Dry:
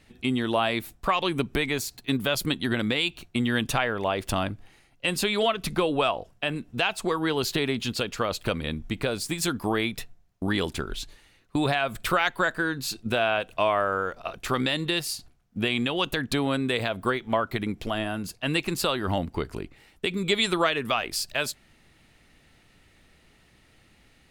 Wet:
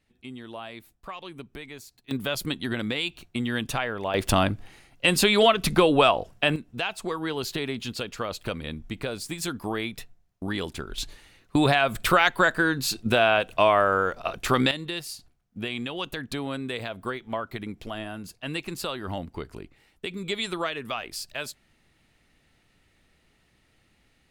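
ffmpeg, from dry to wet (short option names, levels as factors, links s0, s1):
-af "asetnsamples=n=441:p=0,asendcmd='2.11 volume volume -3dB;4.14 volume volume 5.5dB;6.56 volume volume -4dB;10.98 volume volume 4dB;14.71 volume volume -6dB',volume=0.188"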